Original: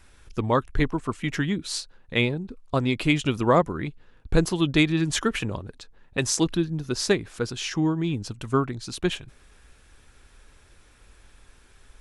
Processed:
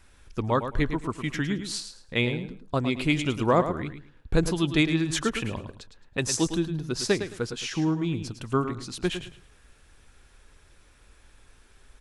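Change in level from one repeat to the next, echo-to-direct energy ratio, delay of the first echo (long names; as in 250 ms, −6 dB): −13.0 dB, −9.5 dB, 108 ms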